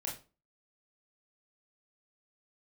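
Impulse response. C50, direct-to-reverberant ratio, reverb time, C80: 8.0 dB, -3.5 dB, 0.35 s, 14.5 dB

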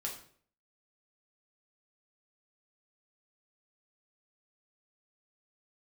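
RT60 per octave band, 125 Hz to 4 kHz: 0.65 s, 0.60 s, 0.60 s, 0.50 s, 0.45 s, 0.45 s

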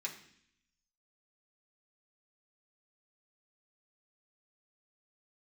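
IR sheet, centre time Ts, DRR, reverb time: 17 ms, -2.5 dB, 0.65 s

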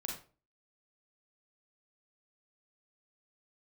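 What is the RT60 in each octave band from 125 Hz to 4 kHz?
0.45 s, 0.45 s, 0.40 s, 0.35 s, 0.30 s, 0.25 s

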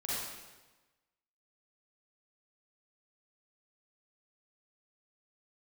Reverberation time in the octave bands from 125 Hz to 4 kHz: 1.2 s, 1.2 s, 1.2 s, 1.2 s, 1.1 s, 1.0 s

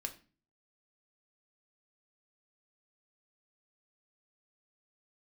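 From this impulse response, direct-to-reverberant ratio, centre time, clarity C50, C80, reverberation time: 4.5 dB, 8 ms, 14.0 dB, 18.5 dB, 0.35 s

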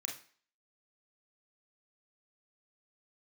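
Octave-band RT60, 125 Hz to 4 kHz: 0.35 s, 0.40 s, 0.45 s, 0.45 s, 0.50 s, 0.45 s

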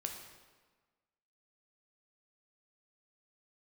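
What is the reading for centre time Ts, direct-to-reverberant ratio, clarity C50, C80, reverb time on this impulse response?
36 ms, 2.5 dB, 5.0 dB, 7.0 dB, 1.4 s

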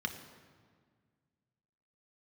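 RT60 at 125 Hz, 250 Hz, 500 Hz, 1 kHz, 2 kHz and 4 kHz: 2.5 s, 2.3 s, 1.8 s, 1.7 s, 1.5 s, 1.2 s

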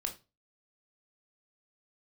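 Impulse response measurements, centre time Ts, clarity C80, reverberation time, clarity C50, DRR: 12 ms, 20.0 dB, no single decay rate, 13.0 dB, 3.0 dB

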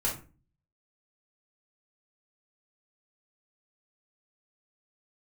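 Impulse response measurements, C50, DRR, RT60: 8.0 dB, -4.5 dB, 0.35 s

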